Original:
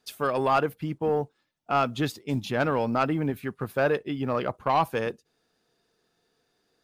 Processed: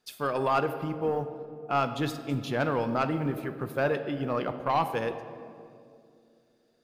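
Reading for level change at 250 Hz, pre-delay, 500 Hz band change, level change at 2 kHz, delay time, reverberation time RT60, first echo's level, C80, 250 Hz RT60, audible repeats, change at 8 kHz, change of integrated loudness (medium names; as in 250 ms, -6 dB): -2.0 dB, 3 ms, -2.5 dB, -2.5 dB, no echo, 2.4 s, no echo, 11.5 dB, 3.2 s, no echo, -3.0 dB, -2.5 dB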